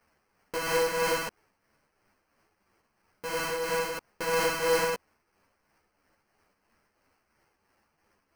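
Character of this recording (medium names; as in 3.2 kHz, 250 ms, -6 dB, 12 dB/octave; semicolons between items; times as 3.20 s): a quantiser's noise floor 12-bit, dither triangular; tremolo triangle 3 Hz, depth 55%; aliases and images of a low sample rate 3.6 kHz, jitter 0%; a shimmering, thickened sound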